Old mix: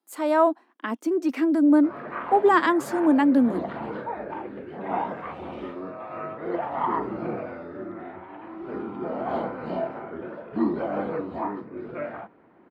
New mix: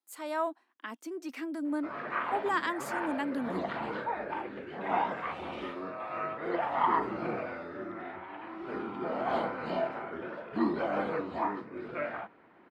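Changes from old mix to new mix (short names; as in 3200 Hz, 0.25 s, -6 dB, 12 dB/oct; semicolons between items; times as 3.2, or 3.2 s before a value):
speech -10.5 dB; master: add tilt shelf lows -6 dB, about 1100 Hz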